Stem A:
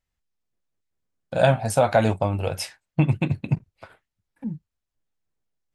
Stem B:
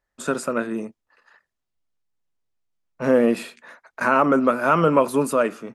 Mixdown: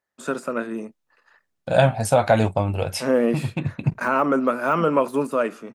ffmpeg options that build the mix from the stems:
-filter_complex "[0:a]adelay=350,volume=1.5dB[a];[1:a]highpass=130,deesser=0.75,volume=-2dB,asplit=2[b][c];[c]apad=whole_len=268660[d];[a][d]sidechaincompress=threshold=-23dB:ratio=8:attack=16:release=849[e];[e][b]amix=inputs=2:normalize=0"

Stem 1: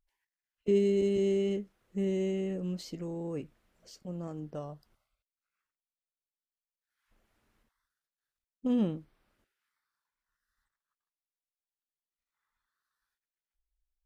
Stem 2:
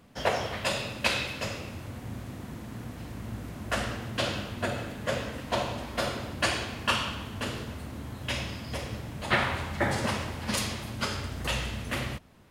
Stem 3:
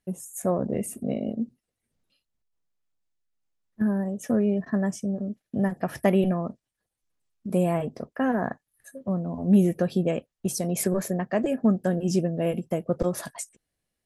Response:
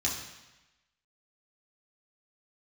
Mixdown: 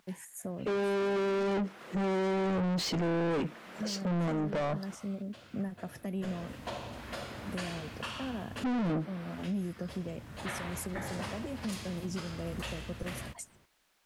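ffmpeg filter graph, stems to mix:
-filter_complex "[0:a]lowshelf=f=120:t=q:w=3:g=-11.5,asplit=2[a][b];[b]highpass=f=720:p=1,volume=38dB,asoftclip=type=tanh:threshold=-13.5dB[c];[a][c]amix=inputs=2:normalize=0,lowpass=f=2.2k:p=1,volume=-6dB,volume=0.5dB,asplit=2[d][e];[1:a]adelay=1150,volume=-6.5dB,afade=t=in:st=6.14:d=0.38:silence=0.237137[f];[2:a]acrossover=split=290|3000[g][h][i];[h]acompressor=threshold=-31dB:ratio=6[j];[g][j][i]amix=inputs=3:normalize=0,volume=-8.5dB[k];[e]apad=whole_len=602138[l];[f][l]sidechaincompress=threshold=-36dB:ratio=4:attack=16:release=1270[m];[d][m][k]amix=inputs=3:normalize=0,asoftclip=type=tanh:threshold=-19.5dB,alimiter=level_in=4dB:limit=-24dB:level=0:latency=1:release=382,volume=-4dB"

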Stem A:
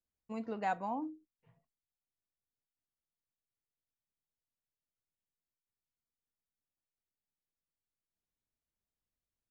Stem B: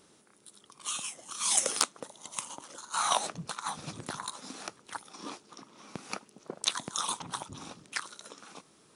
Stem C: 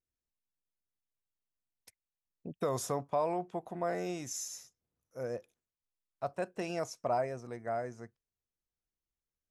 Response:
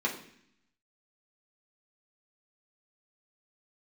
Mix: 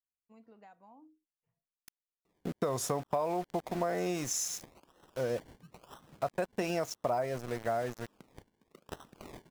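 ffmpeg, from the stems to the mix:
-filter_complex "[0:a]acompressor=threshold=-36dB:ratio=6,volume=-17dB[a];[1:a]equalizer=f=750:t=o:w=0.45:g=-12.5,acrusher=samples=27:mix=1:aa=0.000001:lfo=1:lforange=16.2:lforate=1,adelay=2250,volume=-15dB[b];[2:a]acontrast=77,aeval=exprs='val(0)*gte(abs(val(0)),0.0112)':c=same,volume=0dB,asplit=2[c][d];[d]apad=whole_len=494310[e];[b][e]sidechaincompress=threshold=-39dB:ratio=12:attack=6.9:release=189[f];[a][f][c]amix=inputs=3:normalize=0,acompressor=threshold=-28dB:ratio=6"

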